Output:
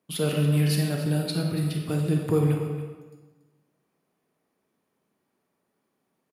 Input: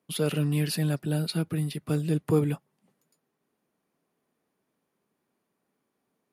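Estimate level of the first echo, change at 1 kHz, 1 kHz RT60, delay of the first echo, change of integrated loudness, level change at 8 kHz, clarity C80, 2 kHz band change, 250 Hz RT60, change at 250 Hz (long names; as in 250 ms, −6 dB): −13.0 dB, +2.5 dB, 1.3 s, 283 ms, +2.5 dB, +1.5 dB, 4.5 dB, +2.0 dB, 1.4 s, +2.0 dB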